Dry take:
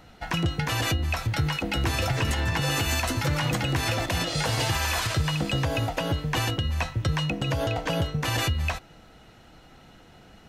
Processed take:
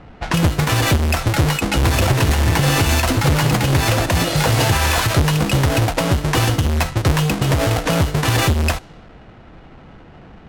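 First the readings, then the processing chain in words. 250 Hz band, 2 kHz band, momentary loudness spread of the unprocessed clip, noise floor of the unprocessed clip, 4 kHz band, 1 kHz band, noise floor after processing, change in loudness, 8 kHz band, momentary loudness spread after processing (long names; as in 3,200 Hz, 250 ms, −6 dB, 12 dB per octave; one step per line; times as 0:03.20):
+10.5 dB, +8.0 dB, 3 LU, −52 dBFS, +6.5 dB, +9.5 dB, −42 dBFS, +9.5 dB, +9.5 dB, 3 LU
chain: each half-wave held at its own peak
low-pass that shuts in the quiet parts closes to 2,200 Hz, open at −19.5 dBFS
level +5 dB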